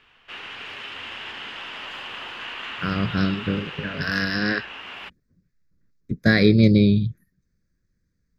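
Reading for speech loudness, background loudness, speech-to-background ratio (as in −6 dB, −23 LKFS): −21.0 LKFS, −34.0 LKFS, 13.0 dB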